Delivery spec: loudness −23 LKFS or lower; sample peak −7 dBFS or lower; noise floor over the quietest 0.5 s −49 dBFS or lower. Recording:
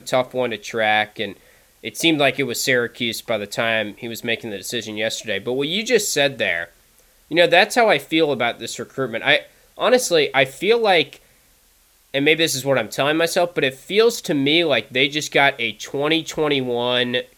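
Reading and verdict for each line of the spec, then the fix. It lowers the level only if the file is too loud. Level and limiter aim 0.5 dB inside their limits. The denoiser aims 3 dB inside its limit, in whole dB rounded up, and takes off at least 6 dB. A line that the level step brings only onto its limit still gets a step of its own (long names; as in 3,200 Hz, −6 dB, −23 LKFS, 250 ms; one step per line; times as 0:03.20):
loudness −19.0 LKFS: out of spec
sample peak −1.5 dBFS: out of spec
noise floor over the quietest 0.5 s −57 dBFS: in spec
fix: level −4.5 dB
brickwall limiter −7.5 dBFS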